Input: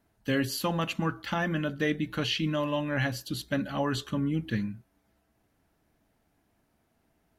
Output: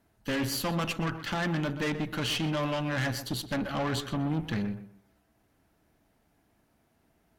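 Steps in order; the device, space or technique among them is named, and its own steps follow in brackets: rockabilly slapback (valve stage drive 32 dB, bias 0.65; tape echo 126 ms, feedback 28%, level -10 dB, low-pass 2.5 kHz); trim +5.5 dB

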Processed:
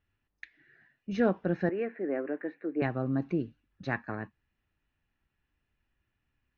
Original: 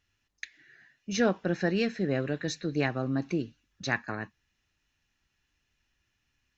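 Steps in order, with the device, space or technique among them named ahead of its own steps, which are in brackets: phone in a pocket (low-pass 3.3 kHz 12 dB/octave; treble shelf 2.1 kHz -11 dB); 1.69–2.82 s: Chebyshev band-pass 290–2200 Hz, order 3

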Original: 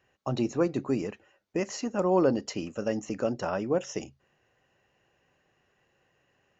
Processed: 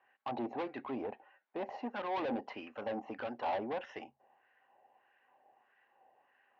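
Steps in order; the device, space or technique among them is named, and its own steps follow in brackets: wah-wah guitar rig (wah-wah 1.6 Hz 720–1600 Hz, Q 2.4; valve stage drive 42 dB, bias 0.3; cabinet simulation 90–3800 Hz, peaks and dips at 170 Hz -9 dB, 240 Hz +7 dB, 800 Hz +8 dB, 1.3 kHz -8 dB); trim +7.5 dB

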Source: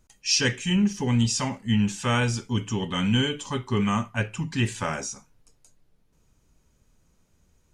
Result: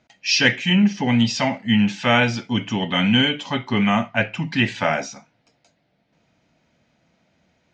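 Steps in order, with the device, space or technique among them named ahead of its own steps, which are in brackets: kitchen radio (cabinet simulation 180–4600 Hz, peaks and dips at 410 Hz -9 dB, 680 Hz +8 dB, 1.1 kHz -7 dB, 2.1 kHz +5 dB); trim +8 dB

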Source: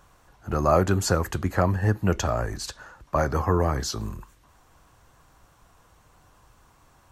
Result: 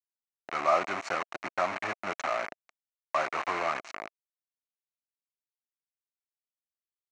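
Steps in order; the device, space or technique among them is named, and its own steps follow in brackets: hand-held game console (bit crusher 4-bit; cabinet simulation 450–5400 Hz, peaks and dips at 470 Hz -8 dB, 670 Hz +6 dB, 1.2 kHz +6 dB, 2.2 kHz +7 dB, 3.4 kHz -10 dB, 4.9 kHz -9 dB); trim -7 dB

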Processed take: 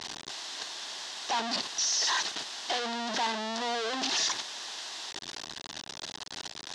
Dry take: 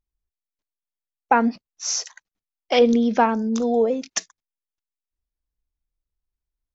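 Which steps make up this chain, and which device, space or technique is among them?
home computer beeper (one-bit comparator; cabinet simulation 500–5900 Hz, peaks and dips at 510 Hz -10 dB, 1.3 kHz -7 dB, 2.3 kHz -9 dB, 3.7 kHz +3 dB)

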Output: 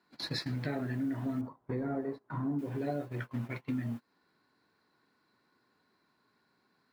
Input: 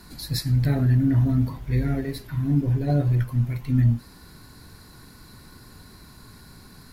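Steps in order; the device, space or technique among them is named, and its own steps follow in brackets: baby monitor (band-pass 320–3100 Hz; compression 6:1, threshold -40 dBFS, peak gain reduction 16 dB; white noise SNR 30 dB; gate -45 dBFS, range -27 dB); 1.41–2.59 s: resonant high shelf 1.6 kHz -13 dB, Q 1.5; trim +7.5 dB

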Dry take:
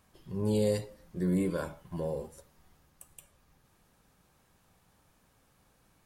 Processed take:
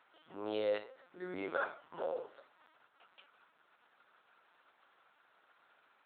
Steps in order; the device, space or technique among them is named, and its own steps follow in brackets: talking toy (LPC vocoder at 8 kHz pitch kept; high-pass 630 Hz 12 dB/octave; peaking EQ 1.4 kHz +8 dB 0.38 oct); trim +1.5 dB

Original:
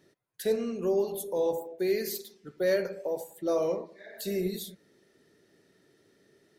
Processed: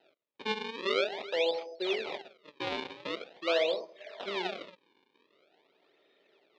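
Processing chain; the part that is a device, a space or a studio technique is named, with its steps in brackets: circuit-bent sampling toy (decimation with a swept rate 38×, swing 160% 0.45 Hz; cabinet simulation 500–4300 Hz, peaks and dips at 620 Hz +5 dB, 1.1 kHz -4 dB, 1.6 kHz -5 dB, 2.4 kHz +5 dB, 3.7 kHz +7 dB)

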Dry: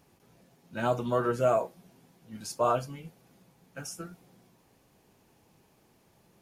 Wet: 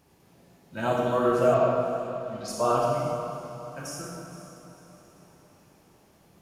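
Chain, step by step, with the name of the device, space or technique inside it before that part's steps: stairwell (reverberation RT60 1.9 s, pre-delay 30 ms, DRR -2 dB); 1.54–2.48 s: resonant high shelf 6.5 kHz -12 dB, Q 1.5; echo that smears into a reverb 491 ms, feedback 46%, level -13 dB

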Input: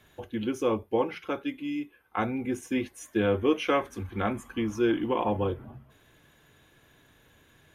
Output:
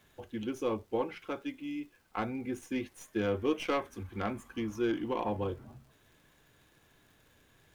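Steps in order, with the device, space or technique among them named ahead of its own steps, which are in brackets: record under a worn stylus (tracing distortion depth 0.053 ms; crackle; pink noise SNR 35 dB); trim -6 dB

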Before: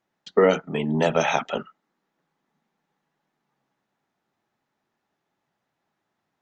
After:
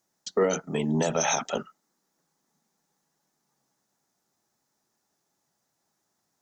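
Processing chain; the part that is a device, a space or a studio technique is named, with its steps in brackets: over-bright horn tweeter (resonant high shelf 4.2 kHz +13 dB, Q 1.5; peak limiter -13 dBFS, peak gain reduction 7.5 dB); trim -1.5 dB

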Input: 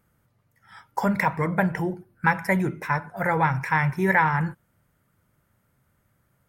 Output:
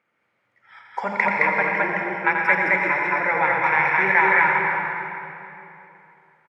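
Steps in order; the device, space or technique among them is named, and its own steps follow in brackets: station announcement (band-pass 380–3700 Hz; peaking EQ 2.3 kHz +11 dB 0.49 oct; loudspeakers at several distances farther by 29 m -6 dB, 74 m -1 dB; reverberation RT60 2.9 s, pre-delay 114 ms, DRR 1.5 dB); trim -1.5 dB

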